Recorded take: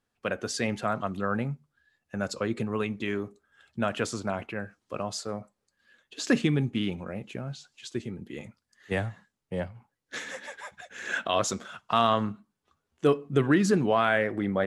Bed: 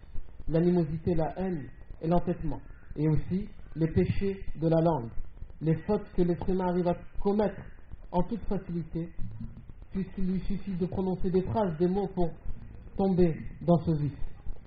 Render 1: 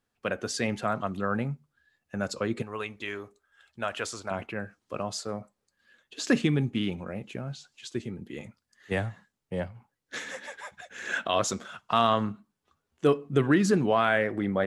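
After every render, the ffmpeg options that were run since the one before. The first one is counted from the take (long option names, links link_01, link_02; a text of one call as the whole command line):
ffmpeg -i in.wav -filter_complex "[0:a]asettb=1/sr,asplit=3[link_01][link_02][link_03];[link_01]atrim=end=2.624[link_04];[link_02]atrim=start=2.62:end=4.31,asetpts=PTS-STARTPTS,afade=type=in:duration=0.004:curve=qsin,afade=type=out:start_time=1.686:duration=0.004:curve=qsin,equalizer=frequency=180:width_type=o:width=2.1:gain=-14[link_05];[link_03]atrim=start=4.306[link_06];[link_04][link_05]acrossfade=duration=0.004:curve1=hsin:curve2=qsin[link_07];[link_07][link_06]acrossfade=duration=0.004:curve1=qsin:curve2=hsin" out.wav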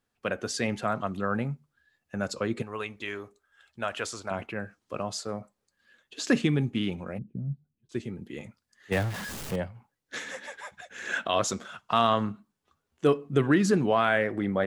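ffmpeg -i in.wav -filter_complex "[0:a]asplit=3[link_01][link_02][link_03];[link_01]afade=type=out:start_time=7.17:duration=0.02[link_04];[link_02]lowpass=frequency=180:width_type=q:width=1.9,afade=type=in:start_time=7.17:duration=0.02,afade=type=out:start_time=7.89:duration=0.02[link_05];[link_03]afade=type=in:start_time=7.89:duration=0.02[link_06];[link_04][link_05][link_06]amix=inputs=3:normalize=0,asettb=1/sr,asplit=3[link_07][link_08][link_09];[link_07]atrim=end=8.924[link_10];[link_08]atrim=start=8.92:end=9.56,asetpts=PTS-STARTPTS,afade=type=in:duration=0.004:curve=qsin,afade=type=out:start_time=0.636:duration=0.004:curve=qsin,aeval=exprs='val(0)+0.5*0.0282*sgn(val(0))':channel_layout=same[link_11];[link_09]atrim=start=9.556[link_12];[link_10][link_11]acrossfade=duration=0.004:curve1=hsin:curve2=qsin[link_13];[link_13][link_12]acrossfade=duration=0.004:curve1=qsin:curve2=hsin" out.wav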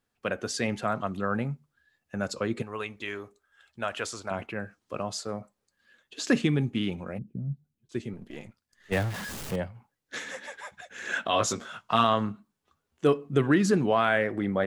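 ffmpeg -i in.wav -filter_complex "[0:a]asettb=1/sr,asplit=3[link_01][link_02][link_03];[link_01]atrim=end=8.134[link_04];[link_02]atrim=start=8.13:end=8.93,asetpts=PTS-STARTPTS,afade=type=in:duration=0.004:curve=qsin,afade=type=out:start_time=0.796:duration=0.004:curve=qsin,aeval=exprs='if(lt(val(0),0),0.447*val(0),val(0))':channel_layout=same[link_05];[link_03]atrim=start=8.926[link_06];[link_04][link_05]acrossfade=duration=0.004:curve1=hsin:curve2=qsin[link_07];[link_07][link_06]acrossfade=duration=0.004:curve1=qsin:curve2=hsin,asettb=1/sr,asplit=3[link_08][link_09][link_10];[link_08]atrim=end=11.264[link_11];[link_09]atrim=start=11.26:end=12.04,asetpts=PTS-STARTPTS,afade=type=in:duration=0.004:curve=qsin,afade=type=out:start_time=0.776:duration=0.004:curve=qsin,asplit=2[link_12][link_13];[link_13]adelay=18,volume=-4dB[link_14];[link_12][link_14]amix=inputs=2:normalize=0,atrim=end_sample=34398[link_15];[link_10]atrim=start=12.036[link_16];[link_11][link_15]acrossfade=duration=0.004:curve1=hsin:curve2=qsin[link_17];[link_17][link_16]acrossfade=duration=0.004:curve1=qsin:curve2=hsin" out.wav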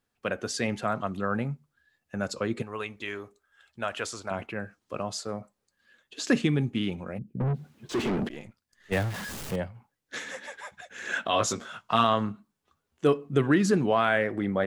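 ffmpeg -i in.wav -filter_complex "[0:a]asettb=1/sr,asplit=3[link_01][link_02][link_03];[link_01]atrim=end=7.404[link_04];[link_02]atrim=start=7.4:end=8.29,asetpts=PTS-STARTPTS,afade=type=in:duration=0.004:curve=qsin,afade=type=out:start_time=0.886:duration=0.004:curve=qsin,asplit=2[link_05][link_06];[link_06]highpass=frequency=720:poles=1,volume=41dB,asoftclip=type=tanh:threshold=-19.5dB[link_07];[link_05][link_07]amix=inputs=2:normalize=0,lowpass=frequency=1400:poles=1,volume=-6dB[link_08];[link_03]atrim=start=8.286[link_09];[link_04][link_08]acrossfade=duration=0.004:curve1=hsin:curve2=qsin[link_10];[link_10][link_09]acrossfade=duration=0.004:curve1=qsin:curve2=hsin" out.wav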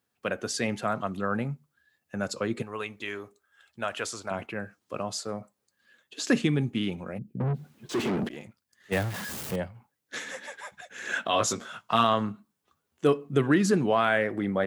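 ffmpeg -i in.wav -af "highpass=87,highshelf=frequency=11000:gain=7" out.wav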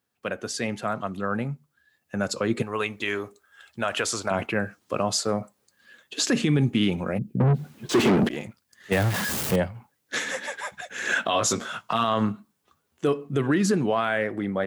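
ffmpeg -i in.wav -af "dynaudnorm=framelen=580:gausssize=9:maxgain=11.5dB,alimiter=limit=-13dB:level=0:latency=1:release=86" out.wav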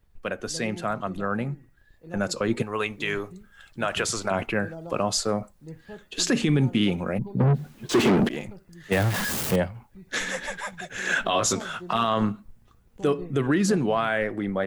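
ffmpeg -i in.wav -i bed.wav -filter_complex "[1:a]volume=-14.5dB[link_01];[0:a][link_01]amix=inputs=2:normalize=0" out.wav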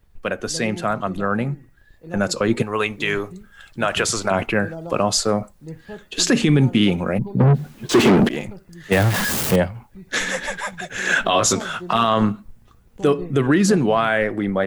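ffmpeg -i in.wav -af "volume=6dB" out.wav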